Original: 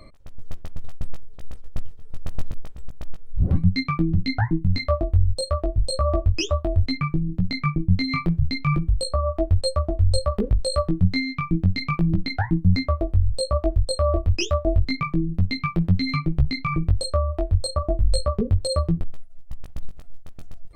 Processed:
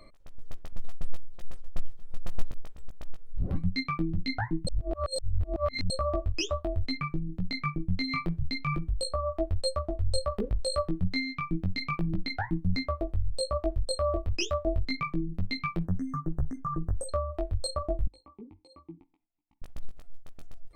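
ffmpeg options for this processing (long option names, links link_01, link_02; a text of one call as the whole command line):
ffmpeg -i in.wav -filter_complex "[0:a]asettb=1/sr,asplit=3[link_01][link_02][link_03];[link_01]atrim=end=0.724[link_04];[link_02]atrim=start=0.72:end=2.45,asetpts=PTS-STARTPTS,afade=type=in:duration=0.004:curve=qsin,afade=type=out:start_time=1.726:duration=0.004:curve=qsin,aecho=1:1:5.7:0.73,atrim=end_sample=76293[link_05];[link_03]atrim=start=2.446[link_06];[link_04][link_05]acrossfade=duration=0.004:curve1=hsin:curve2=qsin[link_07];[link_07][link_06]acrossfade=duration=0.004:curve1=qsin:curve2=hsin,asettb=1/sr,asplit=3[link_08][link_09][link_10];[link_08]atrim=end=15.854[link_11];[link_09]atrim=start=15.85:end=17.09,asetpts=PTS-STARTPTS,afade=type=in:duration=0.004:curve=qsin,afade=type=out:start_time=1.236:duration=0.004:curve=qsin,asuperstop=centerf=3200:order=20:qfactor=0.84[link_12];[link_10]atrim=start=17.086[link_13];[link_11][link_12]acrossfade=duration=0.004:curve1=hsin:curve2=qsin[link_14];[link_14][link_13]acrossfade=duration=0.004:curve1=qsin:curve2=hsin,asettb=1/sr,asplit=3[link_15][link_16][link_17];[link_15]atrim=end=18.074[link_18];[link_16]atrim=start=18.07:end=19.62,asetpts=PTS-STARTPTS,afade=type=in:duration=0.004:curve=qsin,afade=type=out:start_time=1.546:duration=0.004:curve=qsin,asplit=3[link_19][link_20][link_21];[link_19]bandpass=frequency=300:width_type=q:width=8,volume=0dB[link_22];[link_20]bandpass=frequency=870:width_type=q:width=8,volume=-6dB[link_23];[link_21]bandpass=frequency=2240:width_type=q:width=8,volume=-9dB[link_24];[link_22][link_23][link_24]amix=inputs=3:normalize=0[link_25];[link_17]atrim=start=19.616[link_26];[link_18][link_25]acrossfade=duration=0.004:curve1=hsin:curve2=qsin[link_27];[link_27][link_26]acrossfade=duration=0.004:curve1=qsin:curve2=hsin,asplit=3[link_28][link_29][link_30];[link_28]atrim=end=4.672[link_31];[link_29]atrim=start=4.668:end=5.902,asetpts=PTS-STARTPTS,areverse[link_32];[link_30]atrim=start=5.898[link_33];[link_31][link_32]acrossfade=duration=0.004:curve1=hsin:curve2=hsin[link_34];[link_34][link_33]acrossfade=duration=0.004:curve1=hsin:curve2=hsin,equalizer=frequency=95:width_type=o:width=2.3:gain=-7.5,volume=-5dB" out.wav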